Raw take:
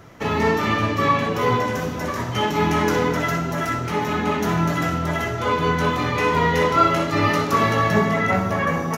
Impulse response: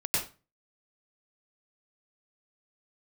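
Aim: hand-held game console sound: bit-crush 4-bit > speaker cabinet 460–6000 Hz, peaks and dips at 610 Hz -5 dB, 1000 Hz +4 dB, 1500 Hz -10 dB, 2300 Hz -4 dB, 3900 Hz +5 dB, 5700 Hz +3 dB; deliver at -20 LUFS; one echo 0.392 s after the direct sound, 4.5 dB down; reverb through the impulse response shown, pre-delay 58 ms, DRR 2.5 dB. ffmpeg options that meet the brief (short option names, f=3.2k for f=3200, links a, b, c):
-filter_complex "[0:a]aecho=1:1:392:0.596,asplit=2[a][b];[1:a]atrim=start_sample=2205,adelay=58[c];[b][c]afir=irnorm=-1:irlink=0,volume=-10.5dB[d];[a][d]amix=inputs=2:normalize=0,acrusher=bits=3:mix=0:aa=0.000001,highpass=460,equalizer=f=610:t=q:w=4:g=-5,equalizer=f=1k:t=q:w=4:g=4,equalizer=f=1.5k:t=q:w=4:g=-10,equalizer=f=2.3k:t=q:w=4:g=-4,equalizer=f=3.9k:t=q:w=4:g=5,equalizer=f=5.7k:t=q:w=4:g=3,lowpass=f=6k:w=0.5412,lowpass=f=6k:w=1.3066,volume=-0.5dB"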